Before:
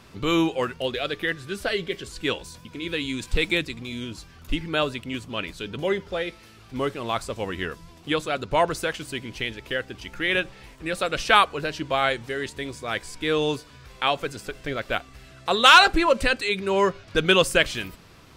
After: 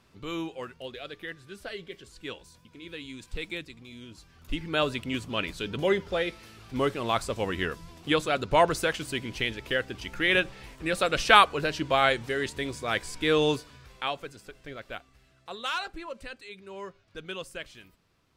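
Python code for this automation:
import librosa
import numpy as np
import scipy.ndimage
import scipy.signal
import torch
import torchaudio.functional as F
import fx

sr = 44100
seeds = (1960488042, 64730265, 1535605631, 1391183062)

y = fx.gain(x, sr, db=fx.line((4.02, -12.5), (4.97, 0.0), (13.51, 0.0), (14.35, -12.0), (14.85, -12.0), (15.81, -19.5)))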